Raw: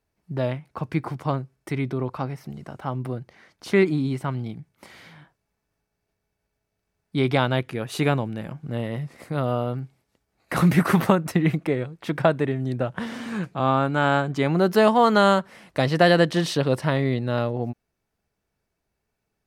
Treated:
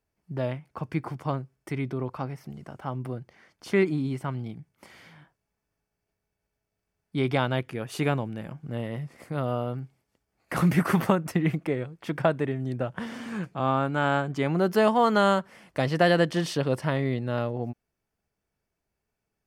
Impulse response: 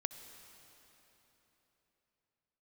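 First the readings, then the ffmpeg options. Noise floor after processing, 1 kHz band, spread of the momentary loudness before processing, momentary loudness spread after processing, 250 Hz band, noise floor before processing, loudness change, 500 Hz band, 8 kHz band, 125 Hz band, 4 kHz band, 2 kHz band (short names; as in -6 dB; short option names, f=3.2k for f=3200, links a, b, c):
-83 dBFS, -4.0 dB, 15 LU, 14 LU, -4.0 dB, -79 dBFS, -4.0 dB, -4.0 dB, -4.0 dB, -4.0 dB, -5.5 dB, -4.0 dB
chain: -af "bandreject=f=3.9k:w=9.8,volume=-4dB"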